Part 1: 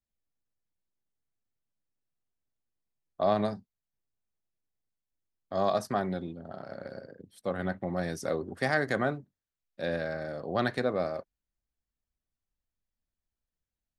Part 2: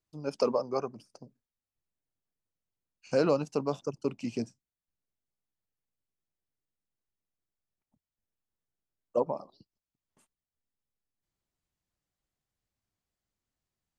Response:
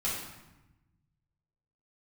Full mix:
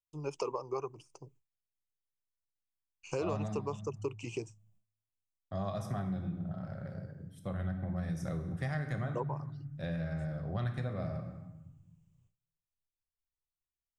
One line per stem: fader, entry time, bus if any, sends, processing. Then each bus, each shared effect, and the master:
−8.0 dB, 0.00 s, send −8.5 dB, low shelf with overshoot 250 Hz +14 dB, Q 1.5; notch filter 4,400 Hz, Q 5.3
−1.0 dB, 0.00 s, no send, EQ curve with evenly spaced ripples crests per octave 0.7, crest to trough 12 dB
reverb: on, RT60 1.0 s, pre-delay 3 ms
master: noise gate with hold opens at −59 dBFS; parametric band 220 Hz −9 dB 0.63 octaves; downward compressor 3 to 1, threshold −34 dBFS, peak gain reduction 10.5 dB

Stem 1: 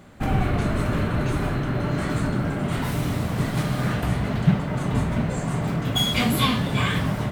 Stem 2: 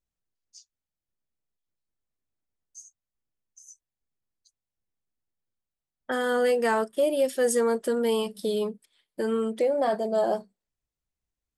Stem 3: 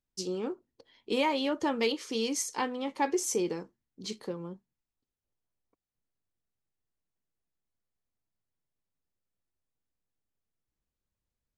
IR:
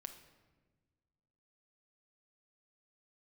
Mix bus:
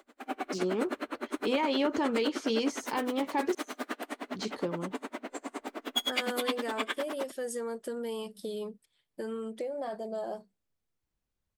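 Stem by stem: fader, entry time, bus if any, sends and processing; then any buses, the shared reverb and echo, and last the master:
−2.5 dB, 0.00 s, no send, Butterworth high-pass 240 Hz 96 dB per octave; tremolo with a sine in dB 9.7 Hz, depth 34 dB
−7.0 dB, 0.00 s, no send, downward compressor 3 to 1, threshold −27 dBFS, peak gain reduction 6.5 dB
+3.0 dB, 0.35 s, muted 0:03.55–0:04.21, no send, de-essing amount 90%; high-shelf EQ 6,100 Hz −7 dB; brickwall limiter −24 dBFS, peak gain reduction 6 dB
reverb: not used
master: no processing

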